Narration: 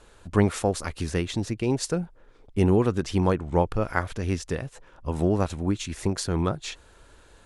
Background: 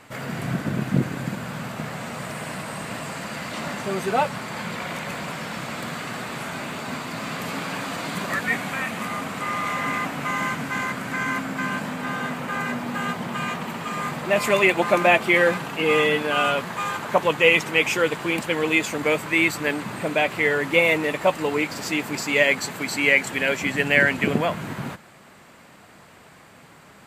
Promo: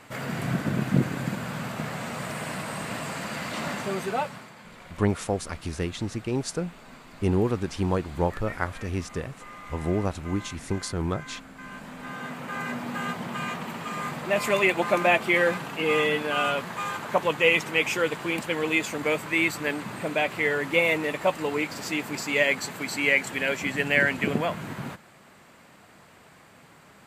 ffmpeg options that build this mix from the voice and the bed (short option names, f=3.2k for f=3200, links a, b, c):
-filter_complex "[0:a]adelay=4650,volume=-3dB[a];[1:a]volume=12dB,afade=t=out:st=3.72:d=0.83:silence=0.158489,afade=t=in:st=11.58:d=1.25:silence=0.223872[b];[a][b]amix=inputs=2:normalize=0"